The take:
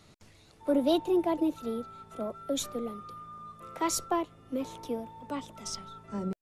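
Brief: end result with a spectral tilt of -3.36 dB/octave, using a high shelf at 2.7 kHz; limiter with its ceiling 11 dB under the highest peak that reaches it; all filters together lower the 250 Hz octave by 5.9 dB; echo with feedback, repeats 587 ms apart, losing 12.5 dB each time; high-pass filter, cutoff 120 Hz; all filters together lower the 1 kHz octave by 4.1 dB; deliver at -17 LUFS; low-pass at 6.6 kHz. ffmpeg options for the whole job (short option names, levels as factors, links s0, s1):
-af "highpass=120,lowpass=6600,equalizer=f=250:t=o:g=-8,equalizer=f=1000:t=o:g=-5.5,highshelf=f=2700:g=4.5,alimiter=level_in=1.33:limit=0.0631:level=0:latency=1,volume=0.75,aecho=1:1:587|1174|1761:0.237|0.0569|0.0137,volume=12.6"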